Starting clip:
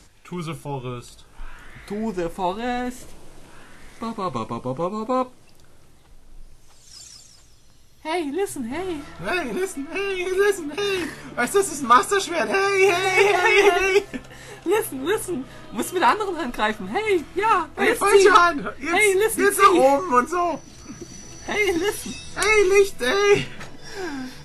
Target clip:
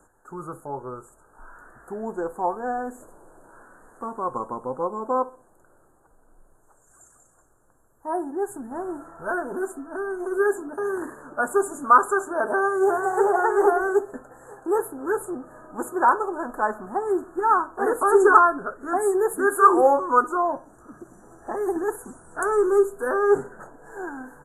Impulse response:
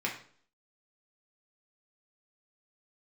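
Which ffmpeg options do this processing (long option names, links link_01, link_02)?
-filter_complex "[0:a]asuperstop=centerf=3400:order=20:qfactor=0.66,bass=frequency=250:gain=-14,treble=frequency=4000:gain=-8,asplit=2[link_01][link_02];[link_02]adelay=64,lowpass=frequency=2000:poles=1,volume=-19dB,asplit=2[link_03][link_04];[link_04]adelay=64,lowpass=frequency=2000:poles=1,volume=0.42,asplit=2[link_05][link_06];[link_06]adelay=64,lowpass=frequency=2000:poles=1,volume=0.42[link_07];[link_01][link_03][link_05][link_07]amix=inputs=4:normalize=0"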